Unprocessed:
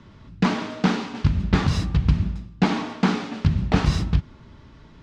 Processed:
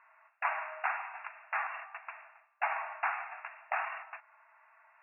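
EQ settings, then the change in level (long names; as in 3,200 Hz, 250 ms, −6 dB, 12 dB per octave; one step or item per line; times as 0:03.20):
linear-phase brick-wall band-pass 620–2,800 Hz
high-frequency loss of the air 210 metres
parametric band 1,800 Hz +4.5 dB 1.3 octaves
−5.5 dB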